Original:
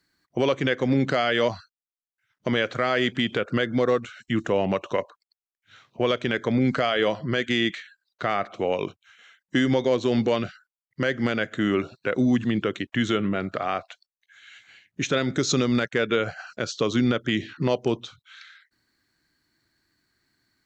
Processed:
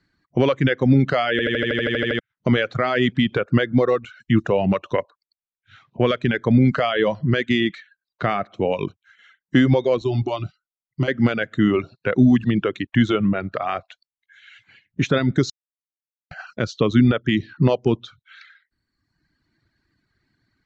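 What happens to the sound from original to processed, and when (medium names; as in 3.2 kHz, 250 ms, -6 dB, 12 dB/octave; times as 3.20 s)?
1.31 s: stutter in place 0.08 s, 11 plays
10.01–11.08 s: static phaser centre 330 Hz, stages 8
15.50–16.31 s: mute
whole clip: low-pass 6.4 kHz 12 dB/octave; reverb removal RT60 1.2 s; tone controls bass +8 dB, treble -7 dB; trim +3.5 dB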